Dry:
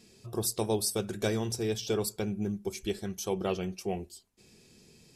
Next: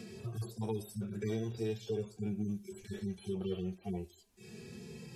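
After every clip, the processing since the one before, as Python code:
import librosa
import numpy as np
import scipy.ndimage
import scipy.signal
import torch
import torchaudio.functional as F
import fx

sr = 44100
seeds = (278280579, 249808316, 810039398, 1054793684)

y = fx.hpss_only(x, sr, part='harmonic')
y = fx.band_squash(y, sr, depth_pct=70)
y = y * 10.0 ** (-3.0 / 20.0)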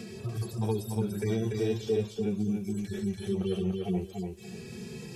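y = fx.echo_feedback(x, sr, ms=290, feedback_pct=22, wet_db=-4.0)
y = y * 10.0 ** (6.0 / 20.0)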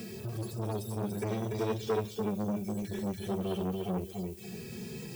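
y = fx.dmg_noise_colour(x, sr, seeds[0], colour='violet', level_db=-54.0)
y = fx.transformer_sat(y, sr, knee_hz=710.0)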